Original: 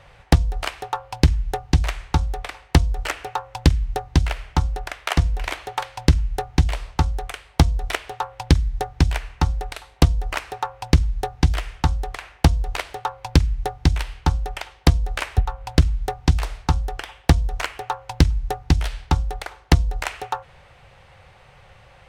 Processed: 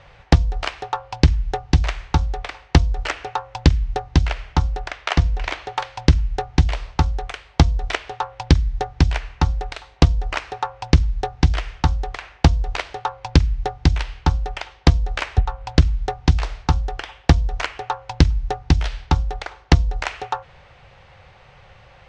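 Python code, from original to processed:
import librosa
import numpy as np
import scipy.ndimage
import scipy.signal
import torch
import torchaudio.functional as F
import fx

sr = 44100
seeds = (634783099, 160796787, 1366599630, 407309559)

y = fx.lowpass(x, sr, hz=8400.0, slope=12, at=(4.89, 5.68))
y = scipy.signal.sosfilt(scipy.signal.butter(4, 6500.0, 'lowpass', fs=sr, output='sos'), y)
y = F.gain(torch.from_numpy(y), 1.5).numpy()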